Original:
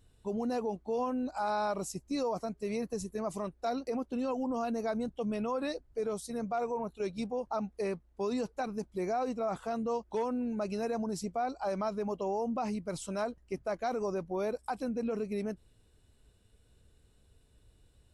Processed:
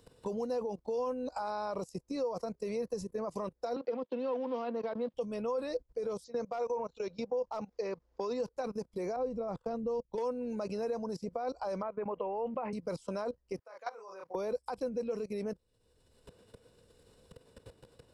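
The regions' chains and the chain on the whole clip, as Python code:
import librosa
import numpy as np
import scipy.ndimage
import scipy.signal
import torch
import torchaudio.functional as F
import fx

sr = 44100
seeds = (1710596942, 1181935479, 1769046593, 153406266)

y = fx.chain(x, sr, fx.law_mismatch(coded='A'),
    fx.cheby1_bandpass(low_hz=220.0, high_hz=3500.0, order=3),
    fx.band_squash(depth_pct=100), at=(3.76, 5.14))
y = fx.chain(y, sr, fx.steep_lowpass(hz=7300.0, slope=96),
    fx.low_shelf(hz=230.0, db=-9.5),
    fx.overload_stage(gain_db=27.5), at=(6.24, 8.4))
y = fx.chain(y, sr, fx.tilt_eq(slope=-4.0),
    fx.level_steps(step_db=18),
    fx.upward_expand(threshold_db=-48.0, expansion=1.5), at=(9.16, 10.18))
y = fx.chain(y, sr, fx.steep_lowpass(hz=2400.0, slope=36),
    fx.low_shelf(hz=370.0, db=-8.5),
    fx.band_squash(depth_pct=100), at=(11.82, 12.73))
y = fx.chain(y, sr, fx.highpass(hz=1200.0, slope=12),
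    fx.high_shelf(hz=2300.0, db=-10.0),
    fx.doubler(ms=31.0, db=-6.0), at=(13.59, 14.35))
y = fx.level_steps(y, sr, step_db=20)
y = fx.graphic_eq_31(y, sr, hz=(500, 1000, 5000), db=(12, 6, 8))
y = fx.band_squash(y, sr, depth_pct=70)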